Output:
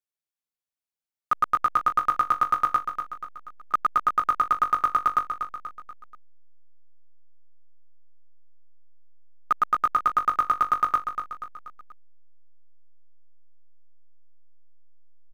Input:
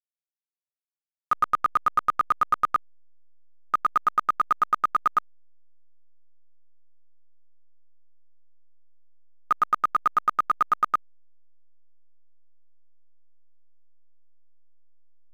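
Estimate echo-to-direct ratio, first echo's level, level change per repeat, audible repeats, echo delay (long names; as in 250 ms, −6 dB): −7.0 dB, −8.0 dB, −6.0 dB, 4, 241 ms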